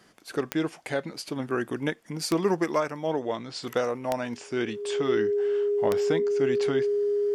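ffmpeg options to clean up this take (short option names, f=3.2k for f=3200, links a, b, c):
-af "adeclick=t=4,bandreject=f=410:w=30"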